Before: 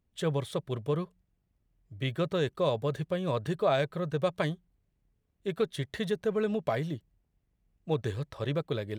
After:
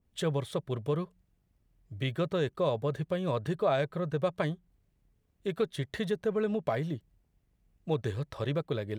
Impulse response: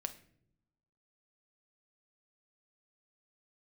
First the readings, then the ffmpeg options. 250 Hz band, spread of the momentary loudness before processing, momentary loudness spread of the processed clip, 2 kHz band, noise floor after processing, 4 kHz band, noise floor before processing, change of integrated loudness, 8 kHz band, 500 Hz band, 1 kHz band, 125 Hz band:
−0.5 dB, 7 LU, 8 LU, −1.5 dB, −74 dBFS, −2.0 dB, −77 dBFS, −0.5 dB, can't be measured, −0.5 dB, −1.0 dB, −0.5 dB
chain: -filter_complex "[0:a]asplit=2[link_01][link_02];[link_02]acompressor=threshold=-39dB:ratio=6,volume=0dB[link_03];[link_01][link_03]amix=inputs=2:normalize=0,adynamicequalizer=threshold=0.00562:dfrequency=2300:dqfactor=0.7:tfrequency=2300:tqfactor=0.7:attack=5:release=100:ratio=0.375:range=2.5:mode=cutabove:tftype=highshelf,volume=-2.5dB"

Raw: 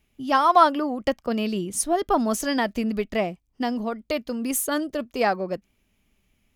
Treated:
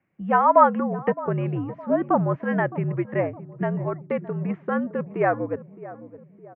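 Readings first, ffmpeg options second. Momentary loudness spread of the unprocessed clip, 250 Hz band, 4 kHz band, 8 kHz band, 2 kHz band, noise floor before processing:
11 LU, −0.5 dB, below −20 dB, below −40 dB, −0.5 dB, −70 dBFS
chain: -filter_complex "[0:a]highpass=frequency=190:width_type=q:width=0.5412,highpass=frequency=190:width_type=q:width=1.307,lowpass=frequency=2100:width_type=q:width=0.5176,lowpass=frequency=2100:width_type=q:width=0.7071,lowpass=frequency=2100:width_type=q:width=1.932,afreqshift=-69,asplit=2[link_01][link_02];[link_02]adelay=614,lowpass=frequency=860:poles=1,volume=-15dB,asplit=2[link_03][link_04];[link_04]adelay=614,lowpass=frequency=860:poles=1,volume=0.52,asplit=2[link_05][link_06];[link_06]adelay=614,lowpass=frequency=860:poles=1,volume=0.52,asplit=2[link_07][link_08];[link_08]adelay=614,lowpass=frequency=860:poles=1,volume=0.52,asplit=2[link_09][link_10];[link_10]adelay=614,lowpass=frequency=860:poles=1,volume=0.52[link_11];[link_01][link_03][link_05][link_07][link_09][link_11]amix=inputs=6:normalize=0,volume=1dB"

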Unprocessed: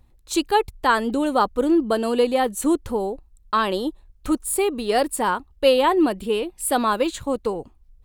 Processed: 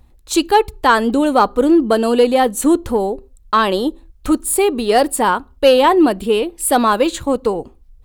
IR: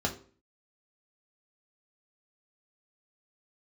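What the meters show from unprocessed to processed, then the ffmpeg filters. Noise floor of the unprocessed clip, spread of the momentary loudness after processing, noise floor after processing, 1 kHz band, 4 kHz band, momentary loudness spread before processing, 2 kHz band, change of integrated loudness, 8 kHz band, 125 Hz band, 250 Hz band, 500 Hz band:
−55 dBFS, 7 LU, −48 dBFS, +6.5 dB, +5.5 dB, 8 LU, +6.0 dB, +6.5 dB, +6.5 dB, can't be measured, +6.5 dB, +6.5 dB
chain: -filter_complex "[0:a]asplit=2[link_01][link_02];[1:a]atrim=start_sample=2205,afade=type=out:start_time=0.26:duration=0.01,atrim=end_sample=11907[link_03];[link_02][link_03]afir=irnorm=-1:irlink=0,volume=-27dB[link_04];[link_01][link_04]amix=inputs=2:normalize=0,asoftclip=type=tanh:threshold=-6.5dB,volume=6.5dB"

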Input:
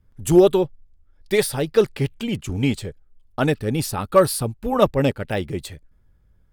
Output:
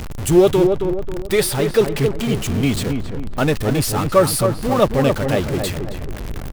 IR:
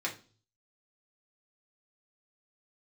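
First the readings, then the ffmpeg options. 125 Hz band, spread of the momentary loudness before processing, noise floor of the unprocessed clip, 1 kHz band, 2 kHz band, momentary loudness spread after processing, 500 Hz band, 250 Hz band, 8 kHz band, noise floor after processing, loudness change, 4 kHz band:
+4.5 dB, 13 LU, −58 dBFS, +3.0 dB, +3.5 dB, 11 LU, +2.5 dB, +3.5 dB, +5.5 dB, −28 dBFS, +2.5 dB, +5.0 dB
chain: -filter_complex "[0:a]aeval=exprs='val(0)+0.5*0.0794*sgn(val(0))':channel_layout=same,asplit=2[link_01][link_02];[link_02]adelay=270,lowpass=frequency=1300:poles=1,volume=-5dB,asplit=2[link_03][link_04];[link_04]adelay=270,lowpass=frequency=1300:poles=1,volume=0.43,asplit=2[link_05][link_06];[link_06]adelay=270,lowpass=frequency=1300:poles=1,volume=0.43,asplit=2[link_07][link_08];[link_08]adelay=270,lowpass=frequency=1300:poles=1,volume=0.43,asplit=2[link_09][link_10];[link_10]adelay=270,lowpass=frequency=1300:poles=1,volume=0.43[link_11];[link_03][link_05][link_07][link_09][link_11]amix=inputs=5:normalize=0[link_12];[link_01][link_12]amix=inputs=2:normalize=0"

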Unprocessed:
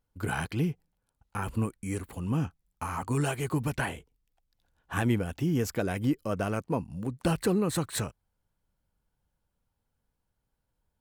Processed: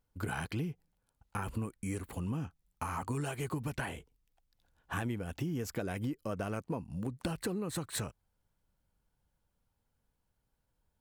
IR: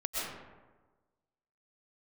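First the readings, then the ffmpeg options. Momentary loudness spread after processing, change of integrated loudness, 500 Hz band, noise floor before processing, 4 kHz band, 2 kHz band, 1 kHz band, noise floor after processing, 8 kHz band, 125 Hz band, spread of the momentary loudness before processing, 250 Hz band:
5 LU, −7.0 dB, −8.0 dB, −82 dBFS, −5.5 dB, −6.0 dB, −5.5 dB, −82 dBFS, −5.5 dB, −7.0 dB, 9 LU, −7.5 dB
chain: -af "acompressor=threshold=-33dB:ratio=6"

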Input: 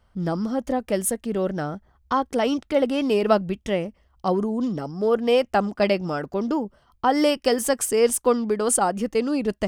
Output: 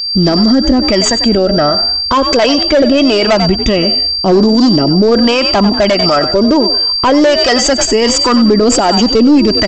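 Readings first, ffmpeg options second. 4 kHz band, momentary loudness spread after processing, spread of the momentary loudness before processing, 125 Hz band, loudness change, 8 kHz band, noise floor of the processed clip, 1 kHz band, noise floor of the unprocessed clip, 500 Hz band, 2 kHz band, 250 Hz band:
+24.5 dB, 2 LU, 8 LU, +14.5 dB, +14.0 dB, +10.0 dB, −16 dBFS, +10.5 dB, −63 dBFS, +11.0 dB, +13.5 dB, +15.0 dB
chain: -filter_complex "[0:a]agate=range=-39dB:threshold=-57dB:ratio=16:detection=peak,aecho=1:1:3.1:0.39,flanger=delay=0.3:depth=1.6:regen=37:speed=0.22:shape=sinusoidal,aeval=exprs='val(0)+0.0126*sin(2*PI*4700*n/s)':channel_layout=same,aeval=exprs='0.376*(cos(1*acos(clip(val(0)/0.376,-1,1)))-cos(1*PI/2))+0.0944*(cos(2*acos(clip(val(0)/0.376,-1,1)))-cos(2*PI/2))':channel_layout=same,aresample=16000,asoftclip=type=hard:threshold=-21.5dB,aresample=44100,acrossover=split=630[link_01][link_02];[link_01]aeval=exprs='val(0)*(1-0.5/2+0.5/2*cos(2*PI*1.4*n/s))':channel_layout=same[link_03];[link_02]aeval=exprs='val(0)*(1-0.5/2-0.5/2*cos(2*PI*1.4*n/s))':channel_layout=same[link_04];[link_03][link_04]amix=inputs=2:normalize=0,asplit=4[link_05][link_06][link_07][link_08];[link_06]adelay=94,afreqshift=47,volume=-15.5dB[link_09];[link_07]adelay=188,afreqshift=94,volume=-25.7dB[link_10];[link_08]adelay=282,afreqshift=141,volume=-35.8dB[link_11];[link_05][link_09][link_10][link_11]amix=inputs=4:normalize=0,alimiter=level_in=29.5dB:limit=-1dB:release=50:level=0:latency=1,volume=-1dB"

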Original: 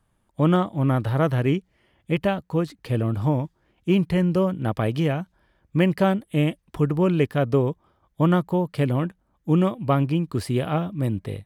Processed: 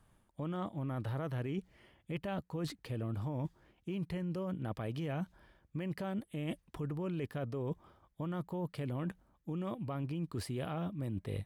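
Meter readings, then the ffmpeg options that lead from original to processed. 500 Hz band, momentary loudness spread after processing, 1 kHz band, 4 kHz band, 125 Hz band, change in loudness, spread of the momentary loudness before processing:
−17.5 dB, 5 LU, −17.0 dB, −14.5 dB, −15.5 dB, −16.5 dB, 7 LU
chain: -af "alimiter=limit=-19.5dB:level=0:latency=1:release=51,areverse,acompressor=threshold=-37dB:ratio=6,areverse,volume=1dB"

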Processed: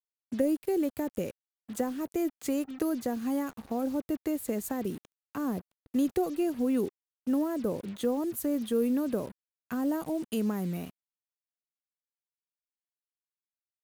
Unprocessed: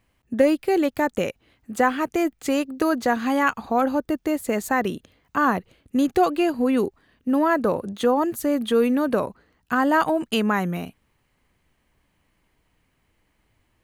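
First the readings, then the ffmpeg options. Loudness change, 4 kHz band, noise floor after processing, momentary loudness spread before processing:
−8.5 dB, −13.5 dB, below −85 dBFS, 9 LU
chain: -filter_complex "[0:a]highshelf=frequency=11000:gain=7,acrossover=split=530|7100[link_01][link_02][link_03];[link_02]acompressor=threshold=-37dB:ratio=12[link_04];[link_01][link_04][link_03]amix=inputs=3:normalize=0,acrusher=bits=6:mix=0:aa=0.5,volume=-6dB"

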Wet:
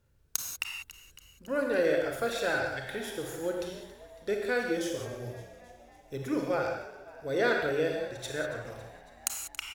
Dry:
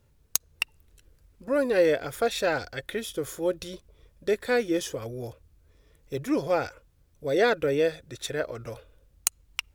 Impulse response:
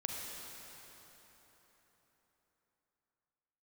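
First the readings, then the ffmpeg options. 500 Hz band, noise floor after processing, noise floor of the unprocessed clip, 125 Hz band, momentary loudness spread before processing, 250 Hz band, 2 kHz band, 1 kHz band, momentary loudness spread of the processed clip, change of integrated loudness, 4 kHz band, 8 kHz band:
−4.5 dB, −59 dBFS, −63 dBFS, −3.0 dB, 15 LU, −4.0 dB, −0.5 dB, −3.0 dB, 18 LU, −4.0 dB, −4.0 dB, −4.5 dB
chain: -filter_complex "[0:a]equalizer=frequency=1500:width=5.2:gain=6.5,asplit=7[link_01][link_02][link_03][link_04][link_05][link_06][link_07];[link_02]adelay=277,afreqshift=60,volume=-17dB[link_08];[link_03]adelay=554,afreqshift=120,volume=-21.2dB[link_09];[link_04]adelay=831,afreqshift=180,volume=-25.3dB[link_10];[link_05]adelay=1108,afreqshift=240,volume=-29.5dB[link_11];[link_06]adelay=1385,afreqshift=300,volume=-33.6dB[link_12];[link_07]adelay=1662,afreqshift=360,volume=-37.8dB[link_13];[link_01][link_08][link_09][link_10][link_11][link_12][link_13]amix=inputs=7:normalize=0[link_14];[1:a]atrim=start_sample=2205,afade=type=out:start_time=0.31:duration=0.01,atrim=end_sample=14112,asetrate=57330,aresample=44100[link_15];[link_14][link_15]afir=irnorm=-1:irlink=0,volume=-2.5dB"

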